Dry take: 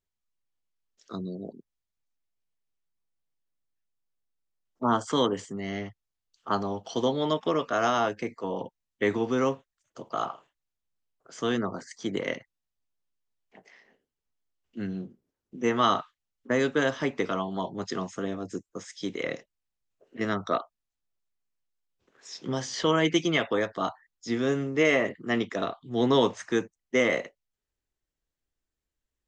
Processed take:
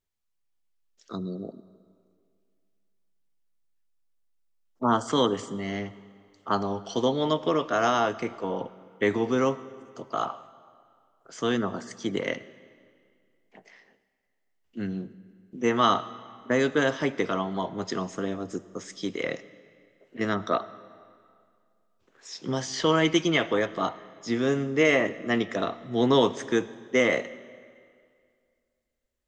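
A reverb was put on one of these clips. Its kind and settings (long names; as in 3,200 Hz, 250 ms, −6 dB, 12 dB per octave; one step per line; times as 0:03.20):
comb and all-pass reverb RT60 2.2 s, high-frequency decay 0.85×, pre-delay 35 ms, DRR 17 dB
level +1.5 dB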